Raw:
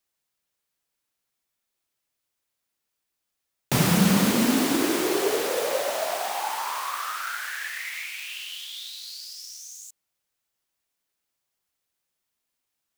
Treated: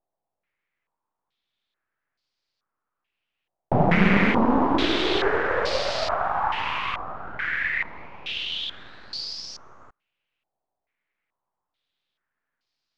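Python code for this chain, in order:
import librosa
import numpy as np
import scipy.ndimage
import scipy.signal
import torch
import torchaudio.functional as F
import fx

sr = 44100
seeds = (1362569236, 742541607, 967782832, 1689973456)

y = np.where(x < 0.0, 10.0 ** (-12.0 / 20.0) * x, x)
y = fx.air_absorb(y, sr, metres=74.0)
y = fx.filter_held_lowpass(y, sr, hz=2.3, low_hz=740.0, high_hz=4700.0)
y = F.gain(torch.from_numpy(y), 4.0).numpy()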